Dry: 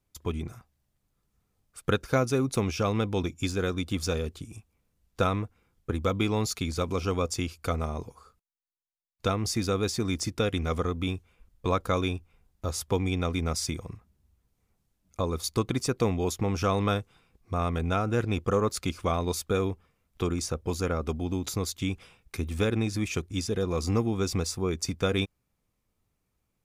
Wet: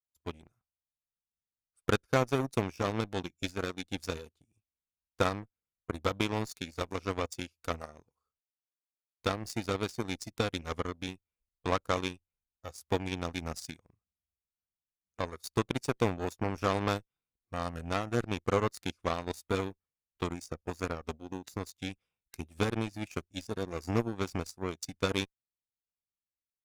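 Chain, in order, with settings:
harmonic generator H 3 −35 dB, 7 −18 dB, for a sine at −11 dBFS
noise reduction from a noise print of the clip's start 7 dB
level −1.5 dB

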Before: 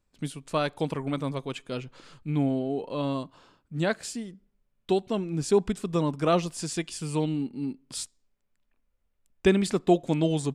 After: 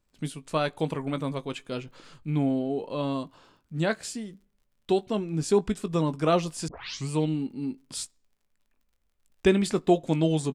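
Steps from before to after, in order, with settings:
0:00.53–0:01.36: notch filter 5,200 Hz, Q 6.5
surface crackle 40 per second −57 dBFS
double-tracking delay 19 ms −13 dB
0:06.68: tape start 0.41 s

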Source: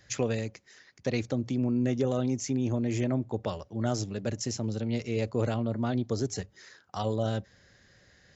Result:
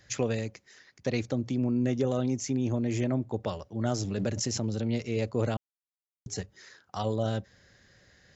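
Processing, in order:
0:04.04–0:05.01: background raised ahead of every attack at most 28 dB per second
0:05.57–0:06.26: silence

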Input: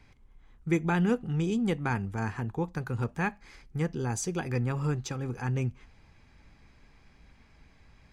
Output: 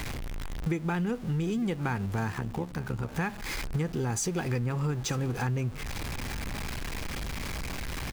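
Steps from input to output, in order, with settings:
converter with a step at zero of −39 dBFS
downward compressor 10 to 1, threshold −36 dBFS, peak gain reduction 15.5 dB
0:02.32–0:03.13: amplitude modulation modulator 70 Hz, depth 55%
on a send: single-tap delay 906 ms −19.5 dB
on the sum: level +9 dB

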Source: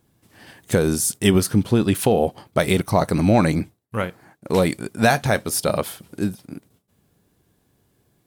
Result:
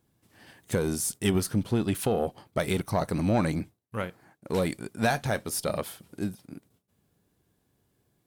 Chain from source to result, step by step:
one-sided soft clipper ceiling −5.5 dBFS
level −7.5 dB

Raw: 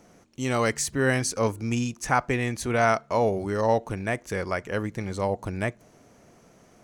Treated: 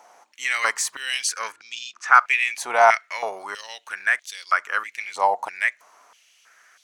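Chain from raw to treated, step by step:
0:01.52–0:02.14: high-frequency loss of the air 110 metres
high-pass on a step sequencer 3.1 Hz 850–3,600 Hz
level +3 dB

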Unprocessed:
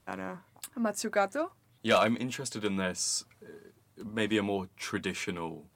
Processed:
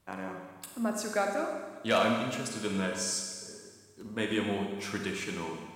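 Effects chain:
four-comb reverb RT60 1.5 s, combs from 31 ms, DRR 2 dB
level −2.5 dB

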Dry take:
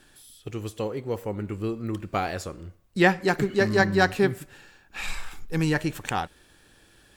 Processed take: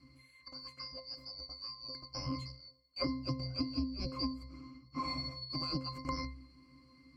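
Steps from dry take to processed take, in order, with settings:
band-splitting scrambler in four parts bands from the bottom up 2341
high-shelf EQ 5,600 Hz +8 dB
resonances in every octave C, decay 0.31 s
hum removal 64.43 Hz, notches 2
downward compressor 16 to 1, threshold −47 dBFS, peak gain reduction 18 dB
level +15 dB

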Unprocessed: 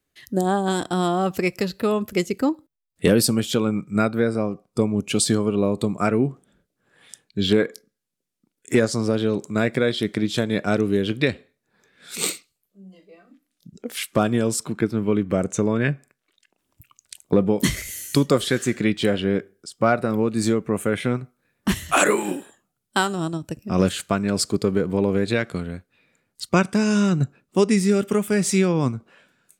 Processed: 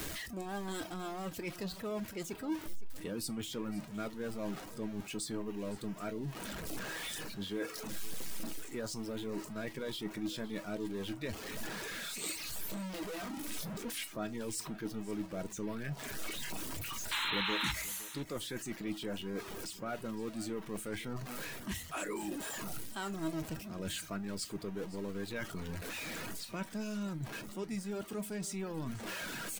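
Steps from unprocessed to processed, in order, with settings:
converter with a step at zero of −22 dBFS
reverb reduction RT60 0.61 s
reversed playback
downward compressor, threshold −25 dBFS, peak gain reduction 13.5 dB
reversed playback
tuned comb filter 320 Hz, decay 0.16 s, harmonics all, mix 60%
sound drawn into the spectrogram noise, 0:17.11–0:17.72, 820–4,200 Hz −29 dBFS
single-tap delay 513 ms −18 dB
on a send at −16 dB: convolution reverb RT60 0.30 s, pre-delay 4 ms
on the sum: level −6 dB

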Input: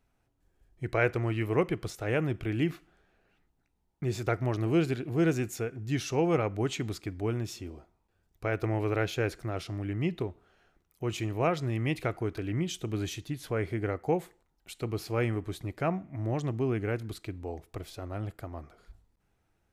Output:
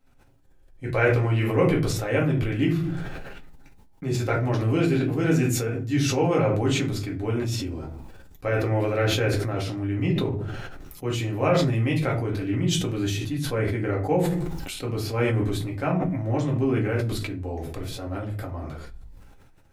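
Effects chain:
convolution reverb RT60 0.35 s, pre-delay 4 ms, DRR −2.5 dB
level that may fall only so fast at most 26 dB per second

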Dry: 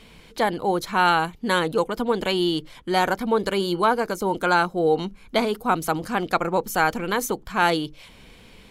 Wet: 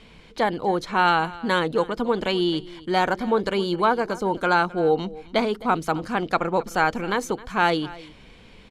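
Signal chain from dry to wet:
high-frequency loss of the air 65 metres
single-tap delay 263 ms −19.5 dB

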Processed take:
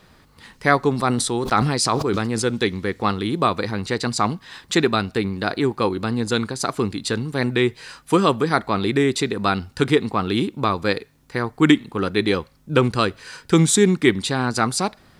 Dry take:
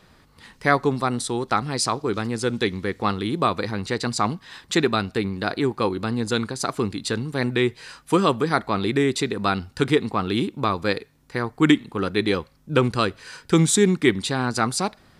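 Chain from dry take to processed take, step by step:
bit-depth reduction 12 bits, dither none
0:00.95–0:02.42: level that may fall only so fast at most 30 dB per second
level +2 dB

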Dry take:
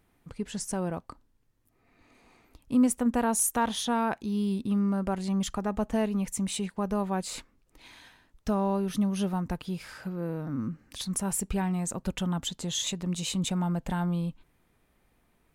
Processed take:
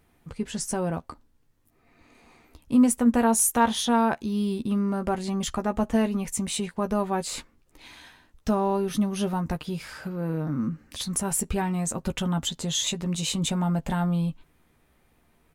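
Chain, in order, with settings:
double-tracking delay 13 ms −7.5 dB
level +3.5 dB

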